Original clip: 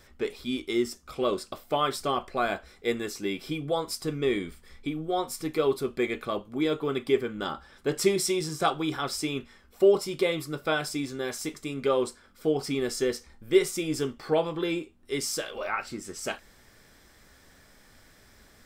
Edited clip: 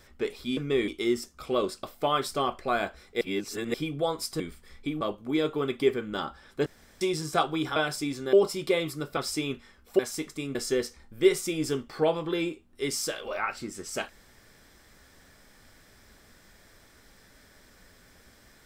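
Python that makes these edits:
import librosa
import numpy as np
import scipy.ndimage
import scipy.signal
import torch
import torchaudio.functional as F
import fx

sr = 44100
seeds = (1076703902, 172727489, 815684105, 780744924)

y = fx.edit(x, sr, fx.reverse_span(start_s=2.9, length_s=0.53),
    fx.move(start_s=4.09, length_s=0.31, to_s=0.57),
    fx.cut(start_s=5.01, length_s=1.27),
    fx.room_tone_fill(start_s=7.93, length_s=0.35),
    fx.swap(start_s=9.03, length_s=0.82, other_s=10.69, other_length_s=0.57),
    fx.cut(start_s=11.82, length_s=1.03), tone=tone)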